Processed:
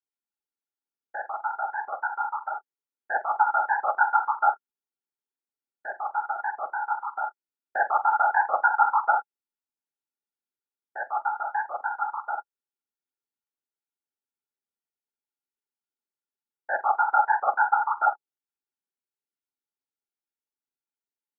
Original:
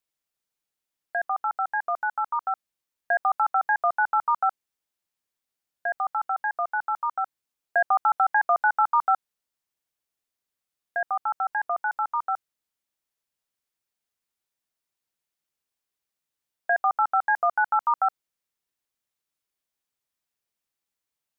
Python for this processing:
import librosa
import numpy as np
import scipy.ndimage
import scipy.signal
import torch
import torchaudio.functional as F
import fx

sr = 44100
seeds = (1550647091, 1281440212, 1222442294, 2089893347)

y = scipy.signal.sosfilt(scipy.signal.butter(2, 170.0, 'highpass', fs=sr, output='sos'), x)
y = fx.room_early_taps(y, sr, ms=(43, 69), db=(-5.0, -16.0))
y = fx.whisperise(y, sr, seeds[0])
y = fx.small_body(y, sr, hz=(260.0, 380.0, 840.0, 1400.0), ring_ms=35, db=14)
y = fx.upward_expand(y, sr, threshold_db=-31.0, expansion=1.5)
y = y * 10.0 ** (-7.0 / 20.0)